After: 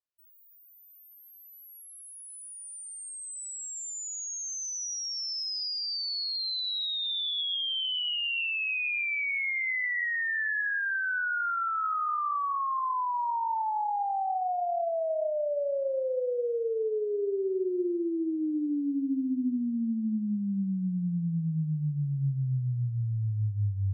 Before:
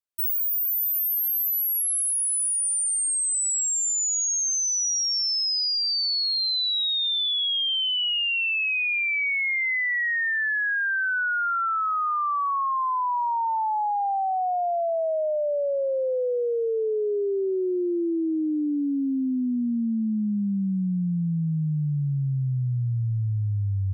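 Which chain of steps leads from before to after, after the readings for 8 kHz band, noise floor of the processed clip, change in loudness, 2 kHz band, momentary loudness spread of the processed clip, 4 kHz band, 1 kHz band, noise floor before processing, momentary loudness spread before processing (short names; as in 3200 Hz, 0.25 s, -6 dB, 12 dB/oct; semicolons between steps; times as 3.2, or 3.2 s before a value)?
-13.5 dB, -54 dBFS, -6.0 dB, -5.0 dB, 8 LU, -7.0 dB, -4.5 dB, -25 dBFS, 4 LU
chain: air absorption 99 m; non-linear reverb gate 0.28 s rising, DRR 11 dB; gain -4.5 dB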